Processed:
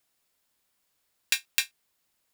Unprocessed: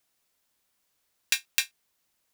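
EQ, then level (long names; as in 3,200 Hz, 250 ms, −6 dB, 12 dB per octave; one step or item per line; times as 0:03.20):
notch filter 6,000 Hz, Q 18
0.0 dB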